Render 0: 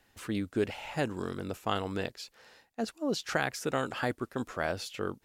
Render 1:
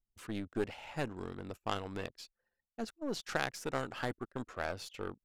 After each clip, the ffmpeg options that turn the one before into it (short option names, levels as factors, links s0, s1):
-af "aeval=exprs='0.237*(cos(1*acos(clip(val(0)/0.237,-1,1)))-cos(1*PI/2))+0.0376*(cos(3*acos(clip(val(0)/0.237,-1,1)))-cos(3*PI/2))+0.00944*(cos(8*acos(clip(val(0)/0.237,-1,1)))-cos(8*PI/2))':c=same,anlmdn=0.001,volume=0.891"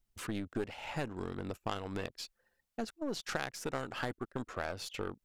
-af "acompressor=threshold=0.00501:ratio=2.5,volume=2.66"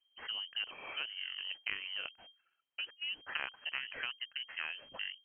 -af "aeval=exprs='if(lt(val(0),0),0.447*val(0),val(0))':c=same,lowpass=f=2700:t=q:w=0.5098,lowpass=f=2700:t=q:w=0.6013,lowpass=f=2700:t=q:w=0.9,lowpass=f=2700:t=q:w=2.563,afreqshift=-3200,volume=1.12"